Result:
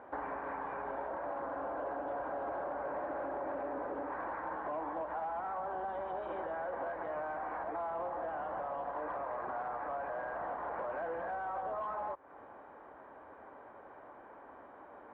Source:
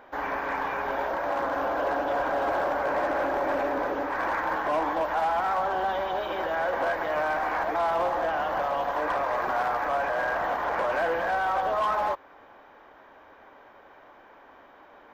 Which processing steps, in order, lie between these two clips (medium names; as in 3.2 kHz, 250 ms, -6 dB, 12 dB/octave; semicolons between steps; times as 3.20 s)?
high-pass 49 Hz; compression, threshold -36 dBFS, peak gain reduction 12.5 dB; low-pass 1.3 kHz 12 dB/octave